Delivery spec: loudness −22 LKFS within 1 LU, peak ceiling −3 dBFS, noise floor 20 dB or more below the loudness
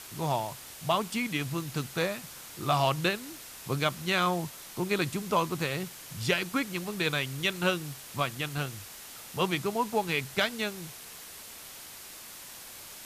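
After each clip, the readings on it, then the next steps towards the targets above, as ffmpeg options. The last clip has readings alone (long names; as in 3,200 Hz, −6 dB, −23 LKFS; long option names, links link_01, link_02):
background noise floor −46 dBFS; target noise floor −51 dBFS; integrated loudness −30.5 LKFS; sample peak −13.0 dBFS; target loudness −22.0 LKFS
→ -af "afftdn=noise_reduction=6:noise_floor=-46"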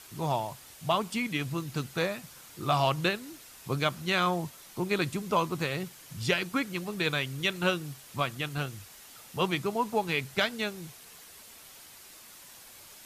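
background noise floor −51 dBFS; integrated loudness −30.5 LKFS; sample peak −13.0 dBFS; target loudness −22.0 LKFS
→ -af "volume=8.5dB"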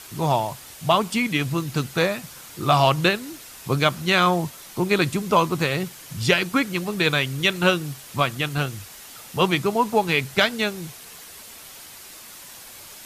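integrated loudness −22.0 LKFS; sample peak −4.5 dBFS; background noise floor −43 dBFS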